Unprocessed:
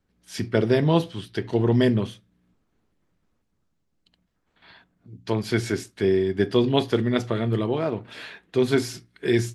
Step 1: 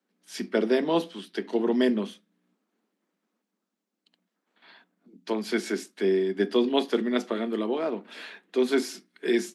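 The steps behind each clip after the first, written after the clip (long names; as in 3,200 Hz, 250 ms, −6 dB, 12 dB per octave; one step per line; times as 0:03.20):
Butterworth high-pass 190 Hz 72 dB per octave
level −2.5 dB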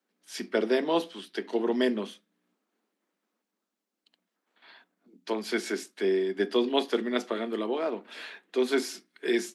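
parametric band 130 Hz −10 dB 1.7 octaves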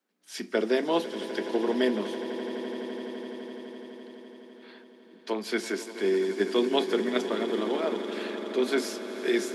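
echo that builds up and dies away 84 ms, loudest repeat 8, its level −17 dB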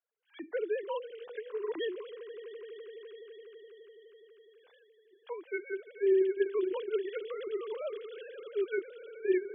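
three sine waves on the formant tracks
level −6 dB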